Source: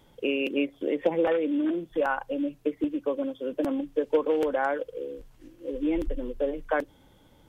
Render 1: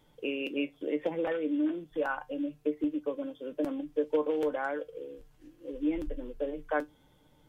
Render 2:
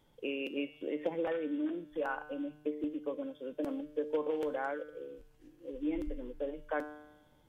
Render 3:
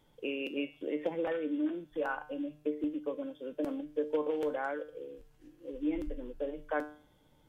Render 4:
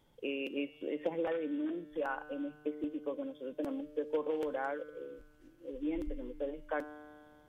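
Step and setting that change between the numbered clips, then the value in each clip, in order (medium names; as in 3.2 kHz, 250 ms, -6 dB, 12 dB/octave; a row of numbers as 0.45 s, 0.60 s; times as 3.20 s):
feedback comb, decay: 0.15 s, 0.98 s, 0.46 s, 2.1 s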